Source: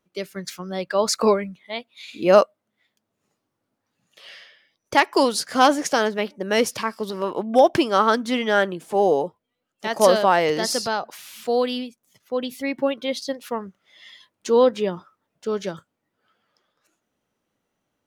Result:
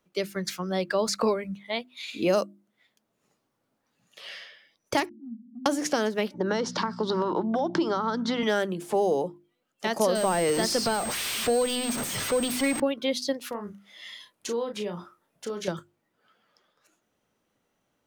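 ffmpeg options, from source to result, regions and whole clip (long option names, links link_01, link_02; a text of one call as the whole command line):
ffmpeg -i in.wav -filter_complex "[0:a]asettb=1/sr,asplit=3[link_01][link_02][link_03];[link_01]atrim=end=5.094[link_04];[link_02]atrim=start=5.09:end=5.66,asetpts=PTS-STARTPTS,afade=type=in:duration=0.004:curve=qsin,afade=type=out:start_time=0.566:duration=0.004:curve=qsin,aeval=exprs='val(0)+0.5*0.119*sgn(val(0))':channel_layout=same,asuperpass=centerf=230:order=8:qfactor=4.9,acompressor=threshold=-44dB:ratio=2.5:attack=3.2:release=140:knee=1:detection=peak[link_05];[link_03]atrim=start=5.656[link_06];[link_04][link_05]acrossfade=duration=0.004:curve1=hsin:curve2=qsin[link_07];[link_07][link_06]acrossfade=duration=0.004:curve1=qsin:curve2=hsin,asettb=1/sr,asplit=3[link_08][link_09][link_10];[link_08]atrim=end=6.344[link_11];[link_09]atrim=start=6.34:end=8.43,asetpts=PTS-STARTPTS,afade=type=in:duration=0.004:curve=qsin,afade=type=out:start_time=2.086:duration=0.004:curve=qsin,acompressor=threshold=-24dB:ratio=5:attack=3.2:release=140:knee=1:detection=peak,aeval=exprs='val(0)+0.0141*(sin(2*PI*60*n/s)+sin(2*PI*2*60*n/s)/2+sin(2*PI*3*60*n/s)/3+sin(2*PI*4*60*n/s)/4+sin(2*PI*5*60*n/s)/5)':channel_layout=same,highpass=frequency=170:width=0.5412,highpass=frequency=170:width=1.3066,equalizer=frequency=170:width_type=q:width=4:gain=8,equalizer=frequency=330:width_type=q:width=4:gain=9,equalizer=frequency=910:width_type=q:width=4:gain=9,equalizer=frequency=1400:width_type=q:width=4:gain=7,equalizer=frequency=2500:width_type=q:width=4:gain=-10,equalizer=frequency=3900:width_type=q:width=4:gain=4,lowpass=frequency=5900:width=0.5412,lowpass=frequency=5900:width=1.3066[link_12];[link_10]atrim=start=8.426[link_13];[link_11][link_12]acrossfade=duration=0.004:curve1=hsin:curve2=qsin[link_14];[link_14][link_13]acrossfade=duration=0.004:curve1=qsin:curve2=hsin,asettb=1/sr,asplit=3[link_15][link_16][link_17];[link_15]atrim=end=10.154[link_18];[link_16]atrim=start=10.15:end=12.8,asetpts=PTS-STARTPTS,afade=type=in:duration=0.004:curve=qsin,afade=type=out:start_time=2.646:duration=0.004:curve=qsin,aeval=exprs='val(0)+0.5*0.0531*sgn(val(0))':channel_layout=same,aeval=exprs='val(0)+0.0251*sin(2*PI*8400*n/s)':channel_layout=same[link_19];[link_17]atrim=start=12.796[link_20];[link_18][link_19]acrossfade=duration=0.004:curve1=hsin:curve2=qsin[link_21];[link_21][link_20]acrossfade=duration=0.004:curve1=qsin:curve2=hsin,asettb=1/sr,asplit=3[link_22][link_23][link_24];[link_22]atrim=end=13.494[link_25];[link_23]atrim=start=13.49:end=15.68,asetpts=PTS-STARTPTS,afade=type=in:duration=0.004:curve=qsin,afade=type=out:start_time=2.186:duration=0.004:curve=qsin,equalizer=frequency=11000:width_type=o:width=0.62:gain=7.5,acompressor=threshold=-34dB:ratio=3:attack=3.2:release=140:knee=1:detection=peak,asplit=2[link_26][link_27];[link_27]adelay=34,volume=-6.5dB[link_28];[link_26][link_28]amix=inputs=2:normalize=0,atrim=end_sample=96579[link_29];[link_24]atrim=start=15.676[link_30];[link_25][link_29]acrossfade=duration=0.004:curve1=hsin:curve2=qsin[link_31];[link_31][link_30]acrossfade=duration=0.004:curve1=qsin:curve2=hsin,bandreject=frequency=50:width_type=h:width=6,bandreject=frequency=100:width_type=h:width=6,bandreject=frequency=150:width_type=h:width=6,bandreject=frequency=200:width_type=h:width=6,bandreject=frequency=250:width_type=h:width=6,bandreject=frequency=300:width_type=h:width=6,bandreject=frequency=350:width_type=h:width=6,acrossover=split=380|5000[link_32][link_33][link_34];[link_32]acompressor=threshold=-29dB:ratio=4[link_35];[link_33]acompressor=threshold=-29dB:ratio=4[link_36];[link_34]acompressor=threshold=-37dB:ratio=4[link_37];[link_35][link_36][link_37]amix=inputs=3:normalize=0,volume=2dB" out.wav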